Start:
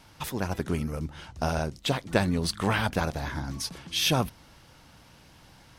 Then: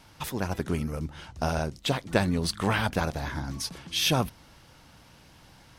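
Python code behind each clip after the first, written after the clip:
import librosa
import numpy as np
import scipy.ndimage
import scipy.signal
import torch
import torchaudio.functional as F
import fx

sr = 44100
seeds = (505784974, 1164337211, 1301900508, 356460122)

y = x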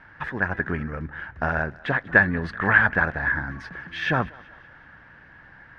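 y = fx.lowpass_res(x, sr, hz=1700.0, q=9.6)
y = fx.echo_thinned(y, sr, ms=191, feedback_pct=53, hz=420.0, wet_db=-22)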